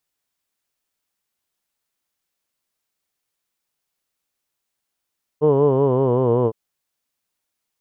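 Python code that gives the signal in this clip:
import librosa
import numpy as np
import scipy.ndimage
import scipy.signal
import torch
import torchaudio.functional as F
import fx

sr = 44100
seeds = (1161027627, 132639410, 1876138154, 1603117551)

y = fx.formant_vowel(sr, seeds[0], length_s=1.11, hz=147.0, glide_st=-4.0, vibrato_hz=5.3, vibrato_st=0.9, f1_hz=450.0, f2_hz=1000.0, f3_hz=3000.0)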